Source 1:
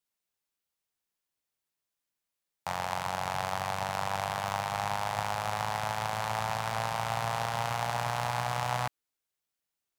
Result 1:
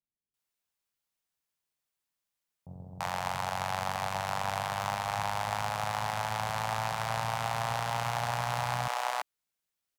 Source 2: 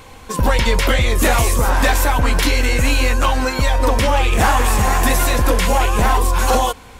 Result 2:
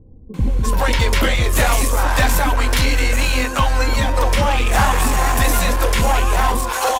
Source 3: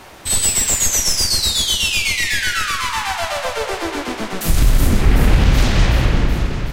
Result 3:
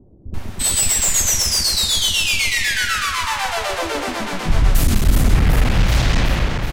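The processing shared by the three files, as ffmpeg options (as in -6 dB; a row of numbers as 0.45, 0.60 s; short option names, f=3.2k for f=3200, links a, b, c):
-filter_complex "[0:a]aeval=exprs='clip(val(0),-1,0.266)':c=same,acrossover=split=370[a][b];[b]adelay=340[c];[a][c]amix=inputs=2:normalize=0"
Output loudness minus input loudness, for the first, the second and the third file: -0.5, -1.0, -0.5 LU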